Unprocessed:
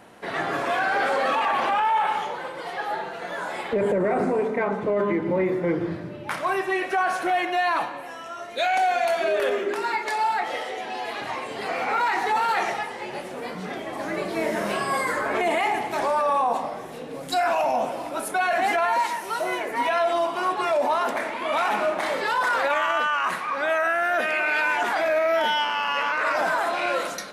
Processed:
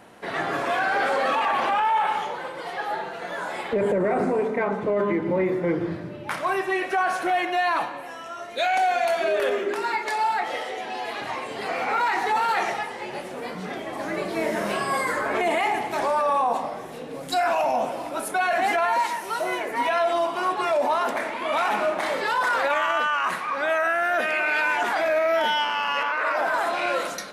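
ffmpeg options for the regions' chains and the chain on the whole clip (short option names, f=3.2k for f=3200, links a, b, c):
-filter_complex "[0:a]asettb=1/sr,asplit=3[a][b][c];[a]atrim=end=26.034[d];[b]atrim=start=26.03:end=26.54,asetpts=PTS-STARTPTS,afade=t=in:d=0.004:c=qsin,afade=t=out:st=0.506:d=0.004:c=qsin,highpass=290,equalizer=f=7.2k:t=o:w=1.7:g=-8[e];[c]atrim=start=26.536[f];[d][e]acrossfade=d=0.004:c1=hsin:c2=qsin[g];[g][f]acrossfade=d=0.004:c1=qsin:c2=hsin"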